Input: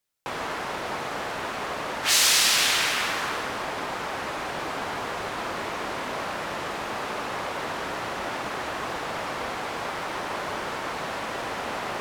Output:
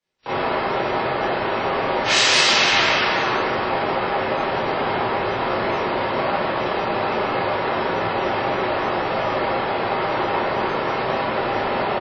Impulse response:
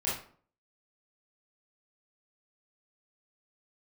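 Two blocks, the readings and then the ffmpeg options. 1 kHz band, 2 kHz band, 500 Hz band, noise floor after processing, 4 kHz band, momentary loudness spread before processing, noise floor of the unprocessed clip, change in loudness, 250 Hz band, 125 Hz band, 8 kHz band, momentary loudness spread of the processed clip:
+9.0 dB, +6.5 dB, +11.5 dB, -24 dBFS, +4.0 dB, 12 LU, -33 dBFS, +6.5 dB, +10.5 dB, +10.5 dB, -3.5 dB, 7 LU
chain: -filter_complex "[0:a]lowpass=4.8k,aecho=1:1:608|1216:0.0708|0.0113[a];[1:a]atrim=start_sample=2205,afade=t=out:st=0.22:d=0.01,atrim=end_sample=10143[b];[a][b]afir=irnorm=-1:irlink=0,acrossover=split=200|860|3200[c][d][e][f];[d]acontrast=23[g];[c][g][e][f]amix=inputs=4:normalize=0" -ar 44100 -c:a wmav2 -b:a 32k

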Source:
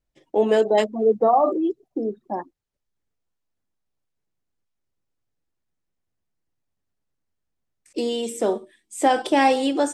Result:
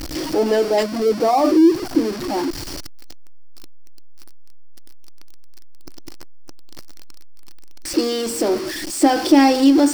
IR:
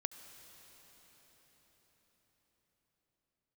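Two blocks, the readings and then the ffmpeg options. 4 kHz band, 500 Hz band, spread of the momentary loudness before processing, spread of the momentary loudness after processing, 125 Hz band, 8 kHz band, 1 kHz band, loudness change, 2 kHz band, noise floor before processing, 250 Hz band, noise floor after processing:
+7.0 dB, +2.0 dB, 14 LU, 12 LU, n/a, +8.5 dB, +1.0 dB, +4.0 dB, +2.5 dB, -79 dBFS, +10.0 dB, -30 dBFS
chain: -af "aeval=exprs='val(0)+0.5*0.0708*sgn(val(0))':c=same,superequalizer=6b=3.16:14b=2.82,volume=-1dB"

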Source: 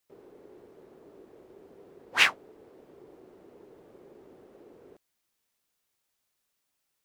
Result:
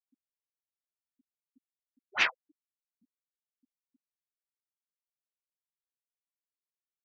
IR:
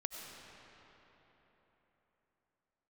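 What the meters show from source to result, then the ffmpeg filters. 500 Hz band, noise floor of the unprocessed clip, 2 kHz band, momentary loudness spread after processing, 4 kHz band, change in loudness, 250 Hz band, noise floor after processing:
-8.5 dB, -80 dBFS, -5.0 dB, 6 LU, -7.0 dB, -5.5 dB, -10.5 dB, under -85 dBFS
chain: -af "afreqshift=-130,afftfilt=real='re*gte(hypot(re,im),0.0355)':imag='im*gte(hypot(re,im),0.0355)':win_size=1024:overlap=0.75,volume=-5dB"

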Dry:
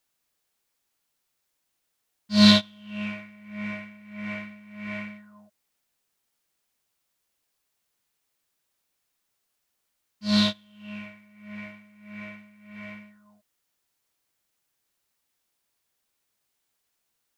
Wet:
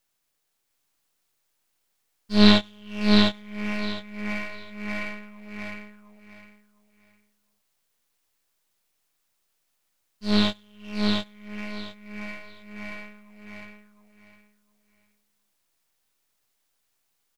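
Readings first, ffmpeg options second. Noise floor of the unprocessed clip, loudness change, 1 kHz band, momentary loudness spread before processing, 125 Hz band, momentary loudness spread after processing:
-78 dBFS, -1.0 dB, +4.0 dB, 25 LU, +2.0 dB, 23 LU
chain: -filter_complex "[0:a]aeval=exprs='if(lt(val(0),0),0.251*val(0),val(0))':c=same,acrossover=split=4500[a][b];[b]acompressor=threshold=-48dB:ratio=4:attack=1:release=60[c];[a][c]amix=inputs=2:normalize=0,asplit=2[d][e];[e]aecho=0:1:707|1414|2121:0.708|0.163|0.0375[f];[d][f]amix=inputs=2:normalize=0,volume=4dB"

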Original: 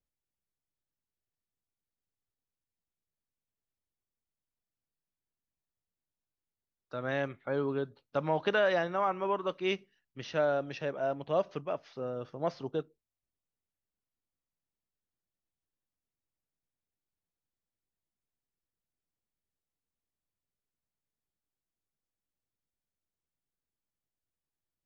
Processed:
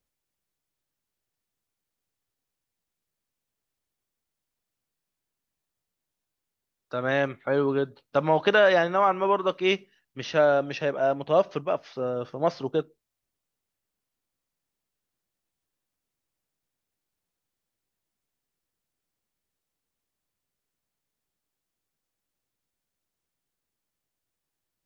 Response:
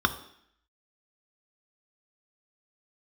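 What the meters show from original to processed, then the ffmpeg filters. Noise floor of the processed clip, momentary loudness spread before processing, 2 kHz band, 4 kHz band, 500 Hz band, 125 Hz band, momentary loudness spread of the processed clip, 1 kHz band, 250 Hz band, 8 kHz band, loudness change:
under -85 dBFS, 10 LU, +8.5 dB, +8.5 dB, +8.0 dB, +6.0 dB, 10 LU, +8.5 dB, +7.0 dB, n/a, +8.0 dB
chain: -af "lowshelf=f=160:g=-5,volume=8.5dB"

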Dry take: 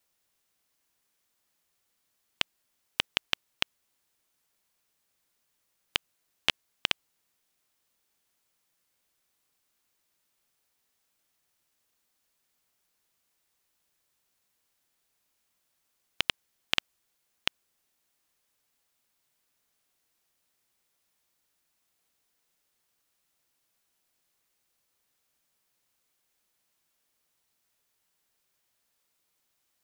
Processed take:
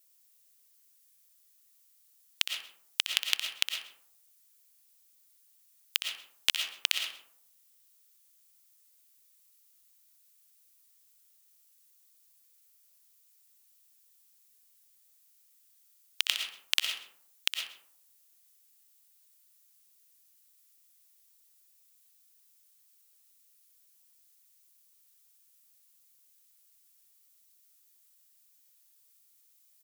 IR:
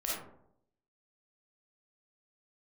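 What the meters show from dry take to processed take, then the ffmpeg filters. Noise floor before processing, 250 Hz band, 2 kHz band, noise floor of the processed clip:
-77 dBFS, under -15 dB, -0.5 dB, -65 dBFS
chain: -filter_complex "[0:a]aderivative,aecho=1:1:129:0.133,asplit=2[a][b];[1:a]atrim=start_sample=2205,adelay=62[c];[b][c]afir=irnorm=-1:irlink=0,volume=-7.5dB[d];[a][d]amix=inputs=2:normalize=0,volume=7.5dB"

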